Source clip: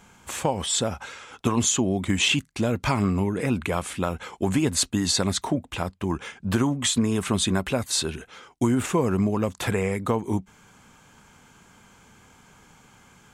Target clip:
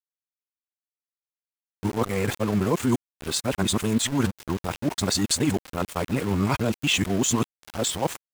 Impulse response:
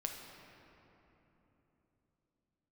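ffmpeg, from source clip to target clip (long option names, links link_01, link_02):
-af "areverse,aeval=exprs='val(0)*gte(abs(val(0)),0.0335)':channel_layout=same,atempo=1.6"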